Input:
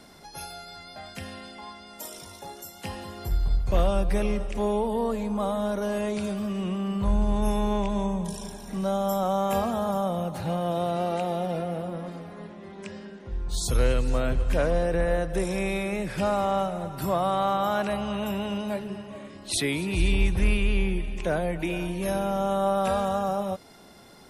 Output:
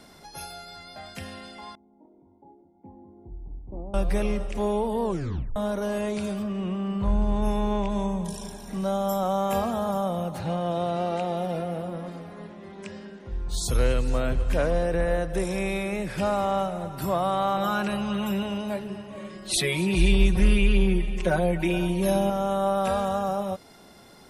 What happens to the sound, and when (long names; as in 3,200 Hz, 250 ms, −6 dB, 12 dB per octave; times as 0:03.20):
0:01.75–0:03.94: formant resonators in series u
0:05.04: tape stop 0.52 s
0:06.42–0:07.90: low-pass filter 2,400 Hz → 5,400 Hz 6 dB per octave
0:10.39–0:11.37: low-pass filter 7,900 Hz
0:17.56–0:18.43: comb filter 5.6 ms
0:19.17–0:22.30: comb filter 5.4 ms, depth 90%